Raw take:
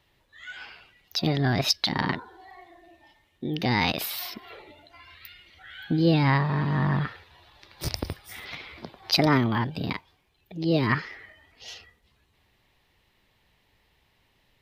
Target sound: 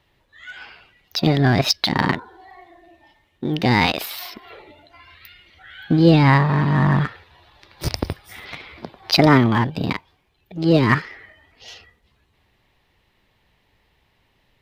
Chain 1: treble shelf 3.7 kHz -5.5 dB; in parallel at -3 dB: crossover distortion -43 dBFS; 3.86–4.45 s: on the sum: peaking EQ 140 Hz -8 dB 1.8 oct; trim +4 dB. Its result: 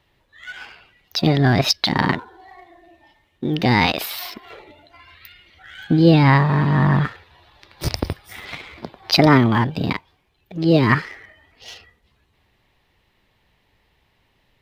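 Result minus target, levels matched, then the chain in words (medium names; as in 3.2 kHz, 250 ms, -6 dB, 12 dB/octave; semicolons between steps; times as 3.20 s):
crossover distortion: distortion -7 dB
treble shelf 3.7 kHz -5.5 dB; in parallel at -3 dB: crossover distortion -34 dBFS; 3.86–4.45 s: on the sum: peaking EQ 140 Hz -8 dB 1.8 oct; trim +4 dB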